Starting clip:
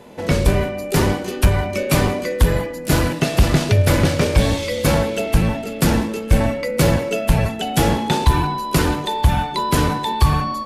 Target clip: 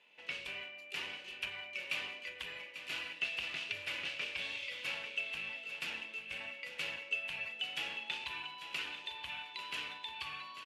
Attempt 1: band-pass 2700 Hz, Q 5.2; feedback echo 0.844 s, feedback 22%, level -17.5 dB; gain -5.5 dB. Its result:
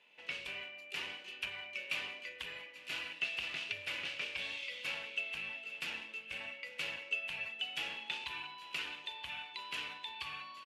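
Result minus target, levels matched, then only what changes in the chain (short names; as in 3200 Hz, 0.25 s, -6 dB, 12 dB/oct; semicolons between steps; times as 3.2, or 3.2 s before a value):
echo-to-direct -7 dB
change: feedback echo 0.844 s, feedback 22%, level -10.5 dB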